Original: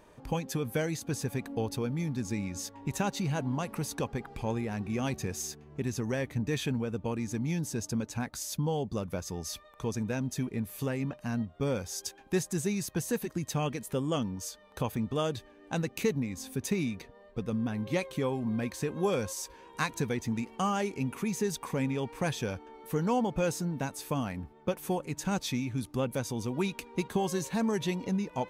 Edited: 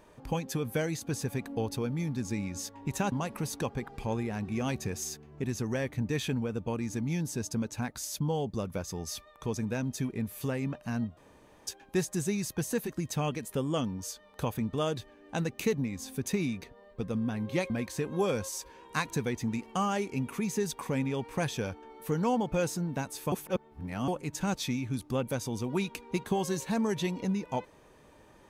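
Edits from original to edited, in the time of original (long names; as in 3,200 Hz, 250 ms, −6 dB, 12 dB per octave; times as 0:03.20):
0:03.12–0:03.50: remove
0:11.55–0:12.05: fill with room tone
0:18.08–0:18.54: remove
0:24.16–0:24.92: reverse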